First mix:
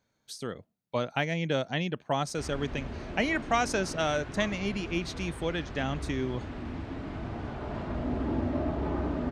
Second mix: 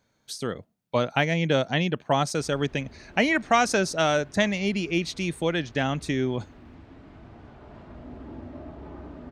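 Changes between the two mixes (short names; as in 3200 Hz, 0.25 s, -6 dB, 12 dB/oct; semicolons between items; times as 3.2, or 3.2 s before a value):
speech +6.0 dB; background -10.5 dB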